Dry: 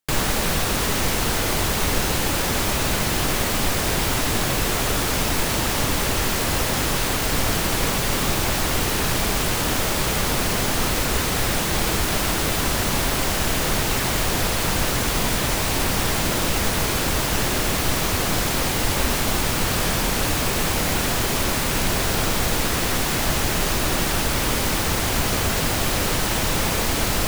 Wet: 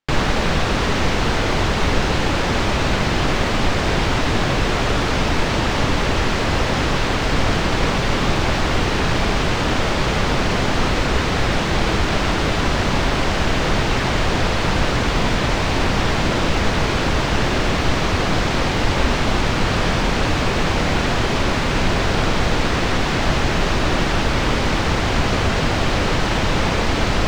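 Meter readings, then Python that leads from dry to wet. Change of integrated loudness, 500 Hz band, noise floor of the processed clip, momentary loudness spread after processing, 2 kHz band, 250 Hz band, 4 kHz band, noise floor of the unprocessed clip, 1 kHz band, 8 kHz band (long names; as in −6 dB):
+2.0 dB, +4.5 dB, −20 dBFS, 0 LU, +3.5 dB, +5.0 dB, +1.0 dB, −23 dBFS, +4.5 dB, −8.0 dB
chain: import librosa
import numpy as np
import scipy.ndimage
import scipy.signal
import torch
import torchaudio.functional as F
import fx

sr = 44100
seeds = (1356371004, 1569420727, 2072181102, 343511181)

y = fx.air_absorb(x, sr, metres=150.0)
y = y * 10.0 ** (5.0 / 20.0)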